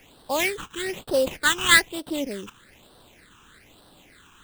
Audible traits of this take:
aliases and images of a low sample rate 5,600 Hz, jitter 20%
phaser sweep stages 8, 1.1 Hz, lowest notch 590–2,200 Hz

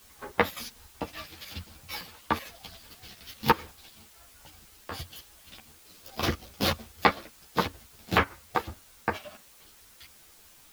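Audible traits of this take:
chopped level 5.3 Hz, depth 65%, duty 60%
a quantiser's noise floor 10 bits, dither triangular
a shimmering, thickened sound

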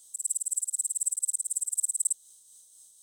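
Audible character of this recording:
tremolo triangle 4 Hz, depth 45%

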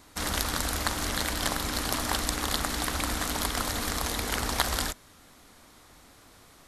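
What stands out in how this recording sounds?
background noise floor −55 dBFS
spectral slope −3.0 dB per octave

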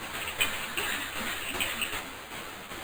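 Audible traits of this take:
a quantiser's noise floor 6 bits, dither triangular
tremolo saw down 2.6 Hz, depth 60%
aliases and images of a low sample rate 5,500 Hz, jitter 0%
a shimmering, thickened sound

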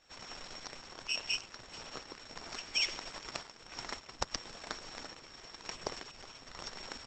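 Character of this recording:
a buzz of ramps at a fixed pitch in blocks of 8 samples
sample-and-hold tremolo
Opus

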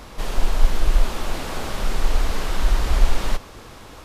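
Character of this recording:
background noise floor −42 dBFS
spectral slope −5.0 dB per octave

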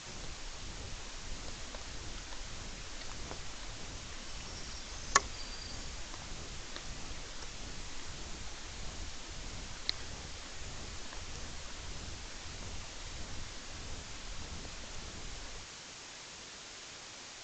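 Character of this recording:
phaser sweep stages 12, 1.6 Hz, lowest notch 120–3,700 Hz
a quantiser's noise floor 8 bits, dither triangular
AAC

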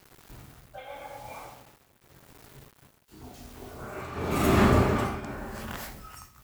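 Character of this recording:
a quantiser's noise floor 8 bits, dither none
tremolo triangle 0.91 Hz, depth 80%

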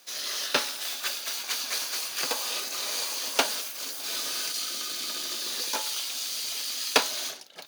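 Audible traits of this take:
background noise floor −43 dBFS
spectral slope +0.5 dB per octave

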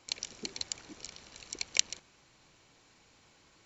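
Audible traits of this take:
background noise floor −64 dBFS
spectral slope +1.0 dB per octave

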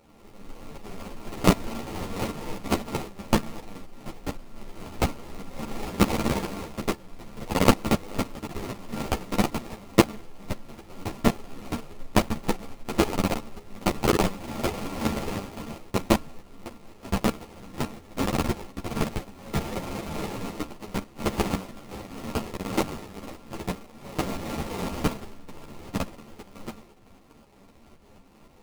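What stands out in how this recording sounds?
a buzz of ramps at a fixed pitch in blocks of 32 samples
tremolo saw up 3.9 Hz, depth 50%
aliases and images of a low sample rate 1,600 Hz, jitter 20%
a shimmering, thickened sound

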